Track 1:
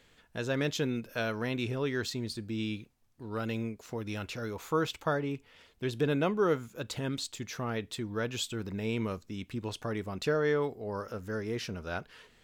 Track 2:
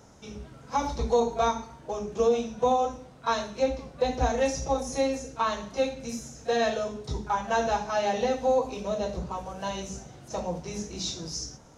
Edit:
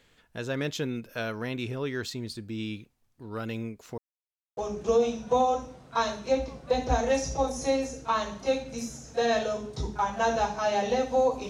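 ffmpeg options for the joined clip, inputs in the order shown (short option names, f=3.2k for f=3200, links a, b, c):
-filter_complex "[0:a]apad=whole_dur=11.49,atrim=end=11.49,asplit=2[a][b];[a]atrim=end=3.98,asetpts=PTS-STARTPTS,afade=t=out:st=3.976:d=0.004:c=hsin[c];[b]atrim=start=3.98:end=4.57,asetpts=PTS-STARTPTS,volume=0[d];[1:a]atrim=start=1.88:end=8.8,asetpts=PTS-STARTPTS,afade=t=in:d=0.004:c=hsin[e];[c][d][e]concat=n=3:v=0:a=1"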